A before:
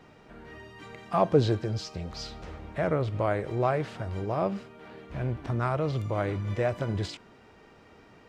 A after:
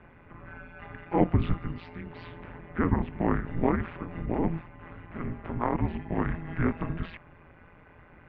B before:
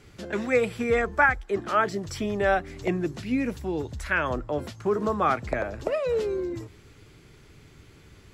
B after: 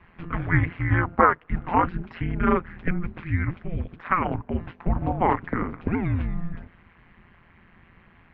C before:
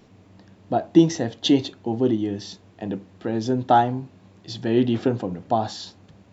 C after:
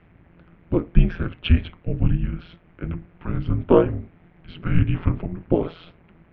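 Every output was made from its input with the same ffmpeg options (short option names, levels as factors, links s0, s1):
-af "highpass=f=170:t=q:w=0.5412,highpass=f=170:t=q:w=1.307,lowpass=f=2700:t=q:w=0.5176,lowpass=f=2700:t=q:w=0.7071,lowpass=f=2700:t=q:w=1.932,afreqshift=-360,aemphasis=mode=production:type=75kf,tremolo=f=170:d=0.857,volume=1.88"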